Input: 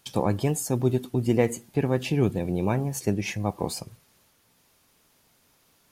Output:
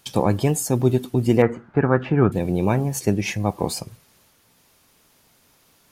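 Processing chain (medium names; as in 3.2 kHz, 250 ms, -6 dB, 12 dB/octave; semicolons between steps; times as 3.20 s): 1.42–2.32 s: resonant low-pass 1.4 kHz, resonance Q 5.5; trim +5 dB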